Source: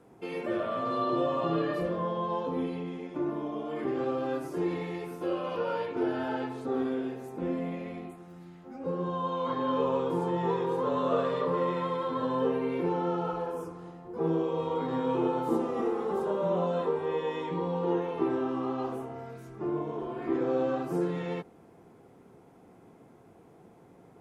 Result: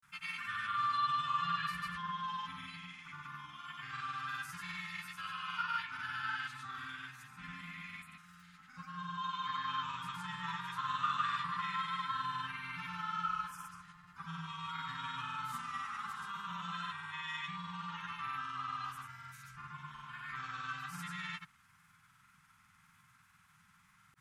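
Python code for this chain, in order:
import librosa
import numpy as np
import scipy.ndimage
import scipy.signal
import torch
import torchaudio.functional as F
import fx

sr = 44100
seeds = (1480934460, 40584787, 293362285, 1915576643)

y = scipy.signal.sosfilt(scipy.signal.ellip(3, 1.0, 50, [160.0, 1300.0], 'bandstop', fs=sr, output='sos'), x)
y = fx.granulator(y, sr, seeds[0], grain_ms=100.0, per_s=20.0, spray_ms=100.0, spread_st=0)
y = fx.low_shelf_res(y, sr, hz=260.0, db=-12.0, q=1.5)
y = y * 10.0 ** (6.0 / 20.0)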